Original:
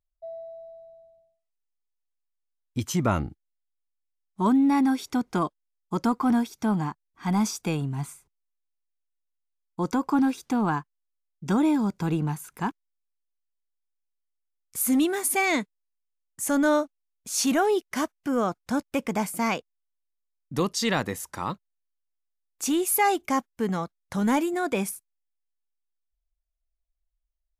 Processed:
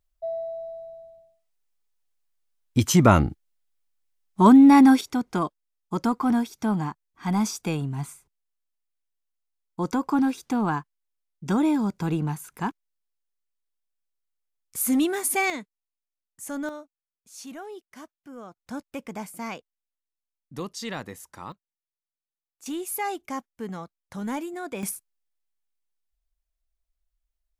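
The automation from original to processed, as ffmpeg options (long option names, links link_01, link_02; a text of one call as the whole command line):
ffmpeg -i in.wav -af "asetnsamples=nb_out_samples=441:pad=0,asendcmd='5.01 volume volume 0dB;15.5 volume volume -9dB;16.69 volume volume -17dB;18.57 volume volume -8.5dB;21.52 volume volume -17dB;22.66 volume volume -7.5dB;24.83 volume volume 2dB',volume=8dB" out.wav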